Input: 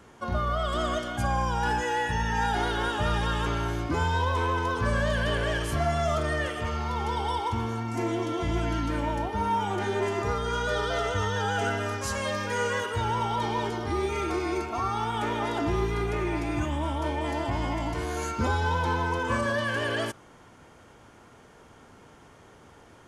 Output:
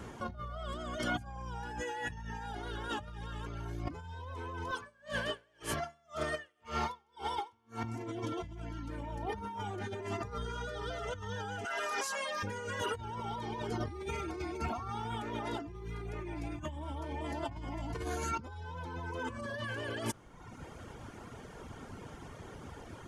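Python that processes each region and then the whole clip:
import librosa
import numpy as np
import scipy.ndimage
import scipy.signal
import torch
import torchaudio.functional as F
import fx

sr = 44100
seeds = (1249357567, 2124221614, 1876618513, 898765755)

y = fx.chain(x, sr, fx.highpass(hz=540.0, slope=6),
    fx.tremolo_db(hz=1.9, depth_db=34), at=(4.71, 7.84))
y = fx.chain(y, sr, fx.highpass(hz=650.0, slope=12),
    fx.env_flatten(amount_pct=70), at=(11.65, 12.43))
y = fx.dereverb_blind(y, sr, rt60_s=0.88)
y = fx.low_shelf(y, sr, hz=260.0, db=7.0)
y = fx.over_compress(y, sr, threshold_db=-36.0, ratio=-1.0)
y = F.gain(torch.from_numpy(y), -3.5).numpy()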